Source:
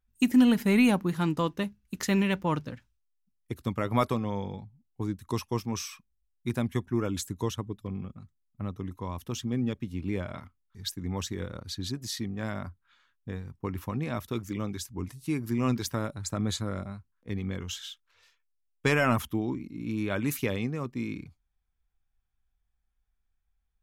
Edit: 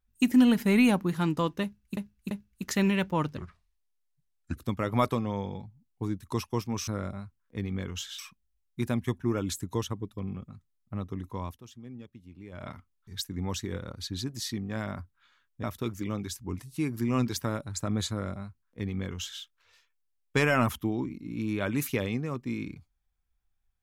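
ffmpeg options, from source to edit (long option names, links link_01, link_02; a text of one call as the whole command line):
ffmpeg -i in.wav -filter_complex "[0:a]asplit=10[link_01][link_02][link_03][link_04][link_05][link_06][link_07][link_08][link_09][link_10];[link_01]atrim=end=1.972[link_11];[link_02]atrim=start=1.628:end=1.972[link_12];[link_03]atrim=start=1.628:end=2.694[link_13];[link_04]atrim=start=2.69:end=3.55,asetpts=PTS-STARTPTS,asetrate=31752,aresample=44100[link_14];[link_05]atrim=start=3.546:end=5.862[link_15];[link_06]atrim=start=16.598:end=17.912[link_16];[link_07]atrim=start=5.858:end=9.28,asetpts=PTS-STARTPTS,afade=type=out:start_time=3.282:duration=0.14:silence=0.177828[link_17];[link_08]atrim=start=9.28:end=10.19,asetpts=PTS-STARTPTS,volume=-15dB[link_18];[link_09]atrim=start=10.19:end=13.312,asetpts=PTS-STARTPTS,afade=type=in:duration=0.14:silence=0.177828[link_19];[link_10]atrim=start=14.128[link_20];[link_11][link_12]acrossfade=duration=0.004:curve1=hsin:curve2=hsin[link_21];[link_21][link_13]acrossfade=duration=0.004:curve1=hsin:curve2=hsin[link_22];[link_22][link_14]acrossfade=duration=0.004:curve1=hsin:curve2=hsin[link_23];[link_23][link_15]acrossfade=duration=0.004:curve1=hsin:curve2=hsin[link_24];[link_24][link_16]acrossfade=duration=0.004:curve1=hsin:curve2=hsin[link_25];[link_17][link_18][link_19]concat=n=3:v=0:a=1[link_26];[link_25][link_26]acrossfade=duration=0.004:curve1=hsin:curve2=hsin[link_27];[link_27][link_20]acrossfade=duration=0.004:curve1=hsin:curve2=hsin" out.wav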